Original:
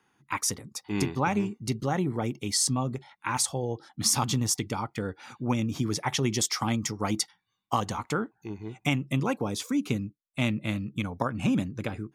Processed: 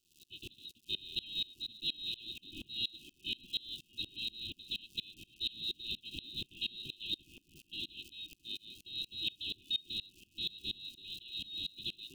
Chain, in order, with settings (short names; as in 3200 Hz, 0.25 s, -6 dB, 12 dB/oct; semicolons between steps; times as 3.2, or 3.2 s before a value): spectral whitening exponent 0.3; soft clip -25 dBFS, distortion -10 dB; compressor, threshold -30 dBFS, peak gain reduction 3.5 dB; on a send: thin delay 1.129 s, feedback 58%, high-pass 1400 Hz, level -9.5 dB; on the sum: inverted band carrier 4000 Hz; crackle 370/s -40 dBFS; brick-wall FIR band-stop 400–2500 Hz; dB-ramp tremolo swelling 4.2 Hz, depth 27 dB; gain +2.5 dB